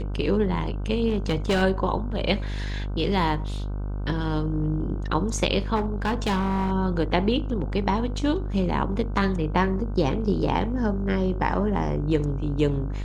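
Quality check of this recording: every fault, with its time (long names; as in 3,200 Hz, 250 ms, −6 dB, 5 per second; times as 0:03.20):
mains buzz 50 Hz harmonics 31 −29 dBFS
0:01.08–0:01.63: clipping −18 dBFS
0:05.75–0:06.72: clipping −20 dBFS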